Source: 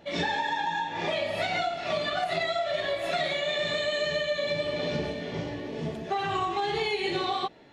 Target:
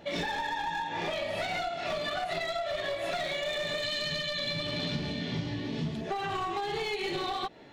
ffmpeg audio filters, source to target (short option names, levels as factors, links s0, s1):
-filter_complex "[0:a]aeval=exprs='clip(val(0),-1,0.0447)':c=same,asettb=1/sr,asplit=3[s0][s1][s2];[s0]atrim=end=3.834[s3];[s1]atrim=start=3.83:end=6.01,asetpts=PTS-STARTPTS,afade=t=in:d=0.004:c=qsin,afade=t=out:st=2.176:d=0.004:c=qsin,equalizer=f=125:t=o:w=1:g=7,equalizer=f=250:t=o:w=1:g=5,equalizer=f=500:t=o:w=1:g=-8,equalizer=f=4000:t=o:w=1:g=8[s4];[s2]atrim=start=6.006[s5];[s3][s4]acrossfade=d=0.004:c1=hsin:c2=qsin[s6];[s6][s5]acrossfade=d=0.004:c1=qsin:c2=hsin,acompressor=threshold=0.02:ratio=3,volume=1.33"